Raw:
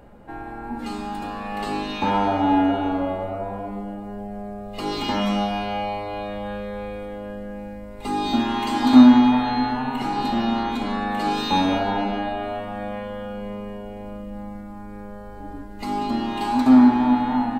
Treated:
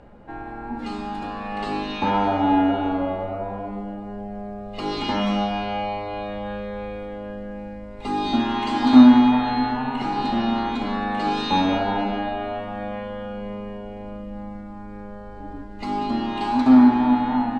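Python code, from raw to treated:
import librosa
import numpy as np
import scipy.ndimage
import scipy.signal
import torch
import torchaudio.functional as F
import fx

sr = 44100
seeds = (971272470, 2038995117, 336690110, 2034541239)

y = scipy.signal.sosfilt(scipy.signal.butter(2, 5400.0, 'lowpass', fs=sr, output='sos'), x)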